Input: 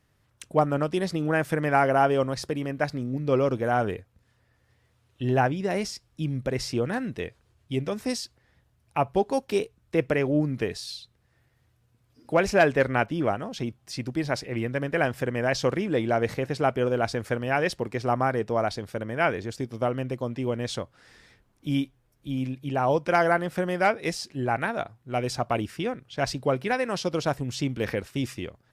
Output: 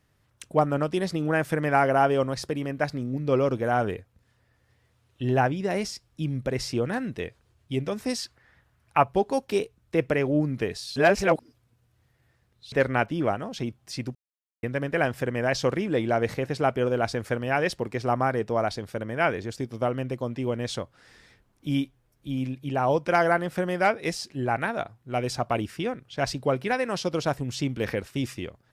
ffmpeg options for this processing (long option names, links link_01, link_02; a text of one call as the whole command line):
ffmpeg -i in.wav -filter_complex "[0:a]asettb=1/sr,asplit=3[link_01][link_02][link_03];[link_01]atrim=end=8.184[link_04];[link_02]atrim=start=8.18:end=9.04,asetpts=PTS-STARTPTS,afade=type=in:duration=0.004:curve=qsin,afade=type=out:start_time=0.856:duration=0.004:curve=qsin,equalizer=frequency=1500:width_type=o:width=1.6:gain=9.5[link_05];[link_03]atrim=start=9.036[link_06];[link_04][link_05]acrossfade=duration=0.004:curve1=hsin:curve2=qsin[link_07];[link_07][link_06]acrossfade=duration=0.004:curve1=qsin:curve2=hsin,asplit=5[link_08][link_09][link_10][link_11][link_12];[link_08]atrim=end=10.962[link_13];[link_09]atrim=start=10.958:end=12.722,asetpts=PTS-STARTPTS,areverse[link_14];[link_10]atrim=start=12.718:end=14.15,asetpts=PTS-STARTPTS,afade=type=out:start_time=1.428:duration=0.004:curve=hsin[link_15];[link_11]atrim=start=14.15:end=14.63,asetpts=PTS-STARTPTS,volume=0[link_16];[link_12]atrim=start=14.63,asetpts=PTS-STARTPTS,afade=type=in:duration=0.004:curve=hsin[link_17];[link_13][link_14]acrossfade=duration=0.004:curve1=hsin:curve2=hsin[link_18];[link_15][link_16][link_17]concat=n=3:v=0:a=1[link_19];[link_18][link_19]acrossfade=duration=0.004:curve1=hsin:curve2=hsin" out.wav